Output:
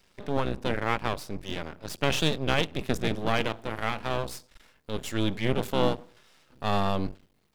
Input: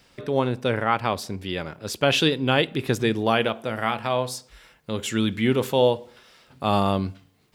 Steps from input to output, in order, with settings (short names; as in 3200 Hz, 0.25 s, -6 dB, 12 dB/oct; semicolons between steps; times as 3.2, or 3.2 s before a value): octaver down 1 oct, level +3 dB; bell 75 Hz -4 dB 1.9 oct; half-wave rectifier; gain -3 dB